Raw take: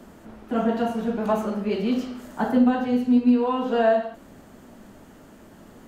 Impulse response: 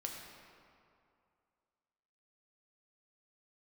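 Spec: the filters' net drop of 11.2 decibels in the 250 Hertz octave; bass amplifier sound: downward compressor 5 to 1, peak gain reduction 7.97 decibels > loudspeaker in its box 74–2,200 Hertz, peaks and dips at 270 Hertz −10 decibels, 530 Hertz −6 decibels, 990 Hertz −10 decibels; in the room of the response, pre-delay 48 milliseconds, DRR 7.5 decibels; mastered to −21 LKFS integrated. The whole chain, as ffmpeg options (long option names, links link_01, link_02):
-filter_complex "[0:a]equalizer=frequency=250:width_type=o:gain=-6,asplit=2[link_01][link_02];[1:a]atrim=start_sample=2205,adelay=48[link_03];[link_02][link_03]afir=irnorm=-1:irlink=0,volume=-7dB[link_04];[link_01][link_04]amix=inputs=2:normalize=0,acompressor=threshold=-23dB:ratio=5,highpass=frequency=74:width=0.5412,highpass=frequency=74:width=1.3066,equalizer=frequency=270:width_type=q:width=4:gain=-10,equalizer=frequency=530:width_type=q:width=4:gain=-6,equalizer=frequency=990:width_type=q:width=4:gain=-10,lowpass=frequency=2200:width=0.5412,lowpass=frequency=2200:width=1.3066,volume=12dB"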